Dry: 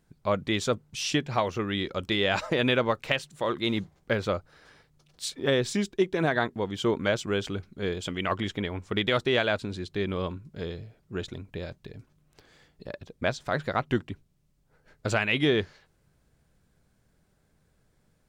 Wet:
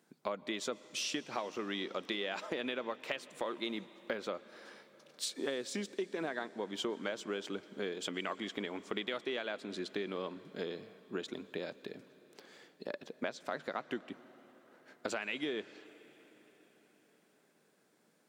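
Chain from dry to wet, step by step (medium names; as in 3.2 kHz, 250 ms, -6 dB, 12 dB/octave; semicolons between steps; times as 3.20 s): high-pass 220 Hz 24 dB/octave; compression 6:1, threshold -36 dBFS, peak gain reduction 16 dB; on a send: reverberation RT60 5.2 s, pre-delay 110 ms, DRR 17 dB; on the sum: trim +1 dB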